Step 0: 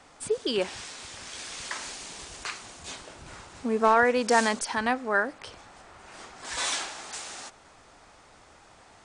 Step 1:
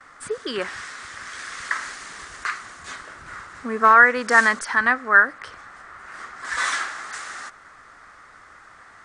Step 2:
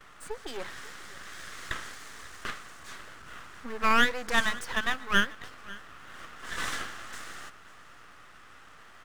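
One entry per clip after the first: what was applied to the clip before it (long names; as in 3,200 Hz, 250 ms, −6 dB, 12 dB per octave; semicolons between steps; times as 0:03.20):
noise gate with hold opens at −47 dBFS; flat-topped bell 1,500 Hz +13.5 dB 1.1 octaves; level −1 dB
mu-law and A-law mismatch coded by mu; half-wave rectification; single-tap delay 544 ms −20 dB; level −6 dB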